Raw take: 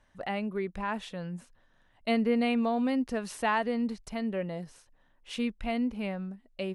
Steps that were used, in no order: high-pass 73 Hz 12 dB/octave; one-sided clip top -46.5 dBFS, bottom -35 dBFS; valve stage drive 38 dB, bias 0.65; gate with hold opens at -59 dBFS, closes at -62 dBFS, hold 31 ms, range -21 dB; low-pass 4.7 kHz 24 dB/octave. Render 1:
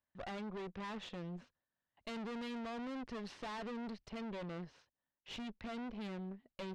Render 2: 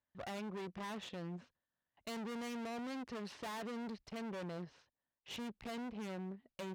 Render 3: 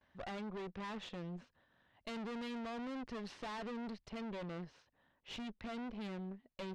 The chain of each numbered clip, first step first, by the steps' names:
high-pass > one-sided clip > low-pass > valve stage > gate with hold; low-pass > one-sided clip > valve stage > high-pass > gate with hold; gate with hold > high-pass > one-sided clip > low-pass > valve stage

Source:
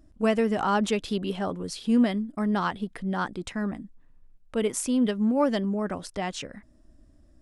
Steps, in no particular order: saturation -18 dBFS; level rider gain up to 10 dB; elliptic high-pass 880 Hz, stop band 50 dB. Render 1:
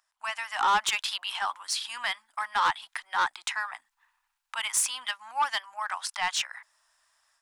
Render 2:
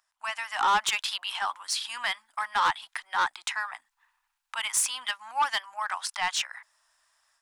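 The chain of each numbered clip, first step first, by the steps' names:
level rider > elliptic high-pass > saturation; elliptic high-pass > level rider > saturation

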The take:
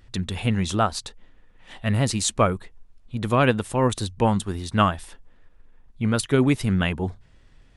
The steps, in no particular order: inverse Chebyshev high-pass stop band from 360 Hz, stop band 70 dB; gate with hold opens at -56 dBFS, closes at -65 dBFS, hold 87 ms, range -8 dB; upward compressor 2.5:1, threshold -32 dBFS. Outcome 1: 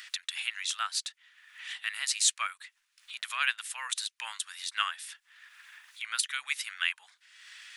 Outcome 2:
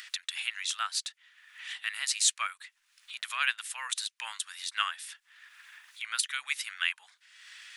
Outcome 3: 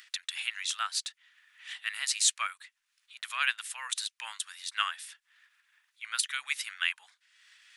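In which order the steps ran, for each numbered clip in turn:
inverse Chebyshev high-pass > upward compressor > gate with hold; gate with hold > inverse Chebyshev high-pass > upward compressor; upward compressor > gate with hold > inverse Chebyshev high-pass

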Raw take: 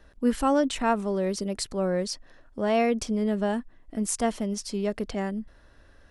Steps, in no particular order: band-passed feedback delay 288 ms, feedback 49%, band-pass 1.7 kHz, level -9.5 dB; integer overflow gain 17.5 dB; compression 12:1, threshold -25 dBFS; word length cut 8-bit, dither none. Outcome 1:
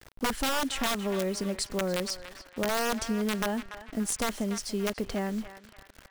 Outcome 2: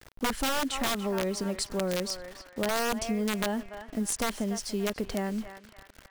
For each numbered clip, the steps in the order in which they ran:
integer overflow > compression > word length cut > band-passed feedback delay; word length cut > band-passed feedback delay > integer overflow > compression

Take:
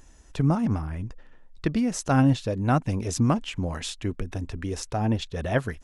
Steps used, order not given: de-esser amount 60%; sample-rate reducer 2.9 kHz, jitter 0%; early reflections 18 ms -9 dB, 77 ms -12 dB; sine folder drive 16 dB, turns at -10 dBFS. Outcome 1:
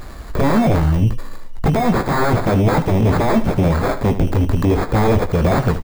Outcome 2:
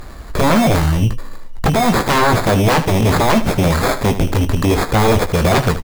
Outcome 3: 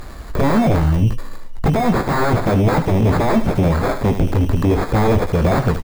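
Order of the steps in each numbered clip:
sine folder > sample-rate reducer > de-esser > early reflections; sample-rate reducer > de-esser > sine folder > early reflections; sample-rate reducer > sine folder > early reflections > de-esser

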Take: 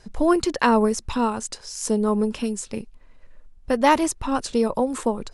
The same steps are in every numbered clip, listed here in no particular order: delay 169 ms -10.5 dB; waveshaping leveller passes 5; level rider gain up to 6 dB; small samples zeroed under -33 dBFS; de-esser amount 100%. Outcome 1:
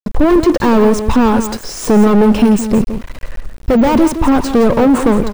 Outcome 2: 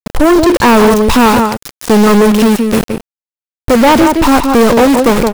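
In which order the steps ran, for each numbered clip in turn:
level rider > waveshaping leveller > de-esser > delay > small samples zeroed; de-esser > small samples zeroed > delay > level rider > waveshaping leveller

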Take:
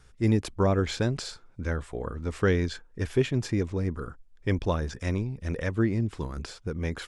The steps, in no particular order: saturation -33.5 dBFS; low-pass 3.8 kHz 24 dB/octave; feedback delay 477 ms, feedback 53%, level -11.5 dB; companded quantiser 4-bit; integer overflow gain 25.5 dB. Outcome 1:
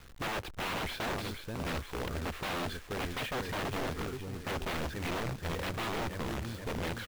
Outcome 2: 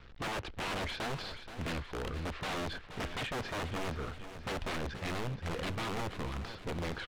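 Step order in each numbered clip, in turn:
feedback delay > integer overflow > low-pass > saturation > companded quantiser; integer overflow > companded quantiser > low-pass > saturation > feedback delay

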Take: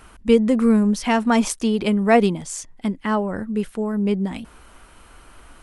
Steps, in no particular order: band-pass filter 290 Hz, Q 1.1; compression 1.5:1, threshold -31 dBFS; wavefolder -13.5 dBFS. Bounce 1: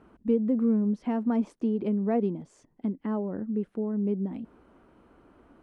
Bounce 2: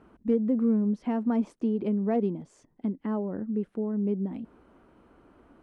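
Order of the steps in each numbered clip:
compression > band-pass filter > wavefolder; compression > wavefolder > band-pass filter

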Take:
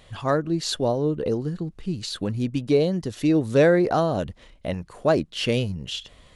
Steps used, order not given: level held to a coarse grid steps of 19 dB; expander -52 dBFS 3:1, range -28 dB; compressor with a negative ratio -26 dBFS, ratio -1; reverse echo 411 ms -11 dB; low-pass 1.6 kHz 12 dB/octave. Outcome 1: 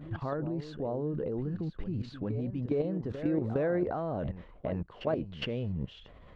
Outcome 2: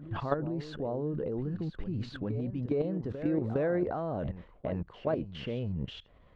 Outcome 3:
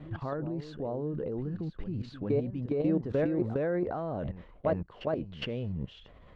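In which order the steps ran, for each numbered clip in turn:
low-pass > level held to a coarse grid > compressor with a negative ratio > expander > reverse echo; level held to a coarse grid > low-pass > expander > compressor with a negative ratio > reverse echo; low-pass > level held to a coarse grid > reverse echo > compressor with a negative ratio > expander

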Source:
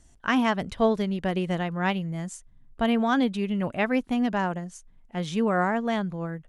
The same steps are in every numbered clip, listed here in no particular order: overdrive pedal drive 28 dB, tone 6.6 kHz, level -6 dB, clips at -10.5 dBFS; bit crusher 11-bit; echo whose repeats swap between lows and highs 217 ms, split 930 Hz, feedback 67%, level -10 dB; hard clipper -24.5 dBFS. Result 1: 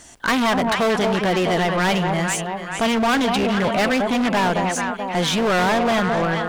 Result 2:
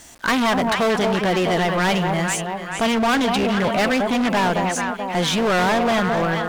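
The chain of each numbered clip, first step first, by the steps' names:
echo whose repeats swap between lows and highs > hard clipper > overdrive pedal > bit crusher; bit crusher > echo whose repeats swap between lows and highs > hard clipper > overdrive pedal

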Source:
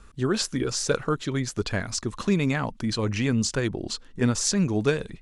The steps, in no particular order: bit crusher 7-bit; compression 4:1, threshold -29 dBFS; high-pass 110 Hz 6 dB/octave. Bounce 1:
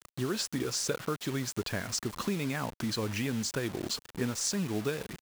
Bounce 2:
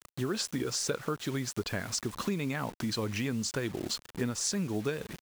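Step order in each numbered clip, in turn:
compression > bit crusher > high-pass; bit crusher > compression > high-pass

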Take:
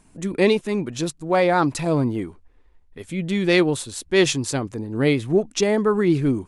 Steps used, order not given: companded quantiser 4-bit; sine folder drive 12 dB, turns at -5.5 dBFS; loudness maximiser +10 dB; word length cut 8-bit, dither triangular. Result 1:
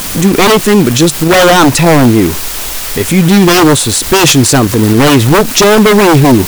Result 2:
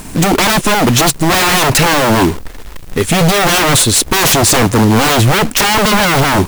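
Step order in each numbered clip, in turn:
word length cut > companded quantiser > sine folder > loudness maximiser; loudness maximiser > companded quantiser > sine folder > word length cut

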